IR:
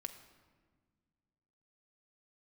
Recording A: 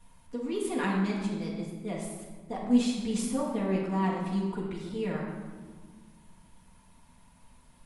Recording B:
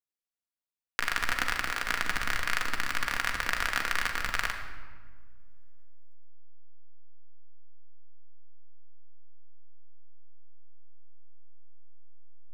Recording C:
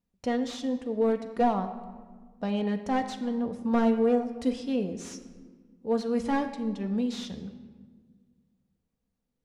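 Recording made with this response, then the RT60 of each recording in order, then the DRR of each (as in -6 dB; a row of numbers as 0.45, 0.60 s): C; 1.5, 1.5, 1.6 s; -8.0, 1.5, 6.5 dB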